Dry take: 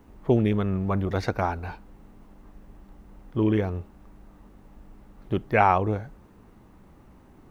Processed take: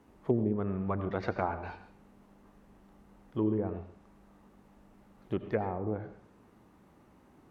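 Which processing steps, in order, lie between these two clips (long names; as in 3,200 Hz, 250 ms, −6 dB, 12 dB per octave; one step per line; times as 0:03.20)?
high-pass filter 160 Hz 6 dB per octave
treble cut that deepens with the level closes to 390 Hz, closed at −18 dBFS
on a send: convolution reverb RT60 0.45 s, pre-delay 76 ms, DRR 10 dB
on the sum: level −5 dB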